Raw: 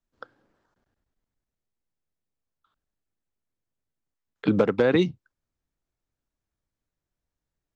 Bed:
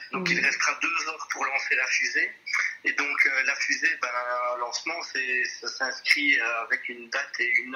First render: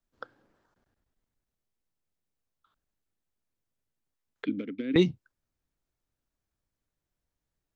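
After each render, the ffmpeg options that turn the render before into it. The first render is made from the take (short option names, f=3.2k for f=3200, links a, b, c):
-filter_complex "[0:a]asettb=1/sr,asplit=3[a][b][c];[a]atrim=end=4.454[d];[b]atrim=start=4.45:end=4.96,asetpts=PTS-STARTPTS,afade=t=in:d=0.004:c=qsin,afade=t=out:st=0.506:d=0.004:c=qsin,asplit=3[e][f][g];[e]bandpass=f=270:t=q:w=8,volume=0dB[h];[f]bandpass=f=2.29k:t=q:w=8,volume=-6dB[i];[g]bandpass=f=3.01k:t=q:w=8,volume=-9dB[j];[h][i][j]amix=inputs=3:normalize=0[k];[c]atrim=start=4.956[l];[d][k]acrossfade=d=0.004:c1=hsin:c2=qsin[m];[m][l]acrossfade=d=0.004:c1=qsin:c2=hsin"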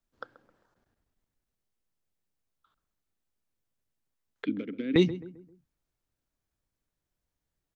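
-filter_complex "[0:a]asplit=2[a][b];[b]adelay=132,lowpass=f=1.3k:p=1,volume=-15dB,asplit=2[c][d];[d]adelay=132,lowpass=f=1.3k:p=1,volume=0.42,asplit=2[e][f];[f]adelay=132,lowpass=f=1.3k:p=1,volume=0.42,asplit=2[g][h];[h]adelay=132,lowpass=f=1.3k:p=1,volume=0.42[i];[a][c][e][g][i]amix=inputs=5:normalize=0"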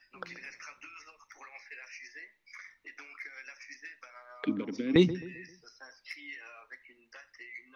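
-filter_complex "[1:a]volume=-23dB[a];[0:a][a]amix=inputs=2:normalize=0"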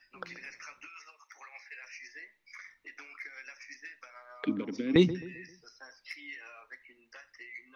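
-filter_complex "[0:a]asettb=1/sr,asplit=3[a][b][c];[a]atrim=end=0.874[d];[b]atrim=start=0.87:end=1.84,asetpts=PTS-STARTPTS,afade=t=in:d=0.004:c=qsin,afade=t=out:st=0.966:d=0.004:c=qsin,highpass=560[e];[c]atrim=start=1.836[f];[d][e]acrossfade=d=0.004:c1=hsin:c2=qsin[g];[g][f]acrossfade=d=0.004:c1=qsin:c2=hsin"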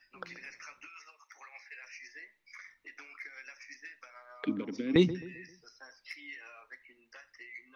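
-af "volume=-1.5dB"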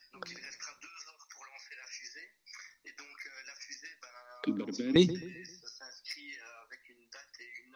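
-af "highshelf=f=3.6k:t=q:w=1.5:g=8,bandreject=f=50:t=h:w=6,bandreject=f=100:t=h:w=6"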